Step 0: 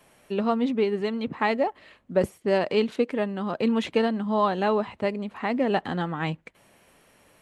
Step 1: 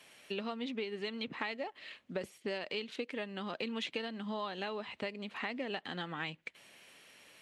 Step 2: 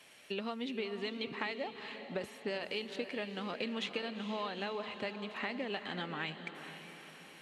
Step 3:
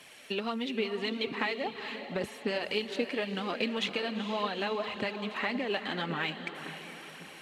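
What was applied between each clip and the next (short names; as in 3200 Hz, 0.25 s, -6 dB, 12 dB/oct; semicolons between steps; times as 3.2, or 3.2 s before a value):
weighting filter D; compressor 6:1, threshold -30 dBFS, peak gain reduction 14.5 dB; gain -5.5 dB
diffused feedback echo 0.454 s, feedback 53%, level -9.5 dB
phaser 1.8 Hz, delay 4.6 ms, feedback 39%; gain +5.5 dB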